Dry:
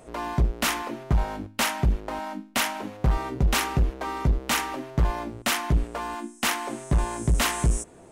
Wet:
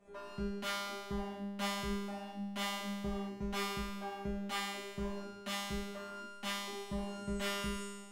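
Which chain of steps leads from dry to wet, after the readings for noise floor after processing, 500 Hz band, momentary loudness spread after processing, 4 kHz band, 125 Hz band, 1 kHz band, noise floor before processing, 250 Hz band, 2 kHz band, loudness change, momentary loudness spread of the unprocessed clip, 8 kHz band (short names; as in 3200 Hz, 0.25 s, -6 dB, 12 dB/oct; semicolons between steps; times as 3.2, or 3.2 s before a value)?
-50 dBFS, -8.5 dB, 6 LU, -10.0 dB, -19.5 dB, -12.5 dB, -50 dBFS, -8.0 dB, -12.5 dB, -13.0 dB, 7 LU, -16.0 dB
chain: high shelf 4200 Hz -10 dB; resonator 200 Hz, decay 1.4 s, mix 100%; gain +11 dB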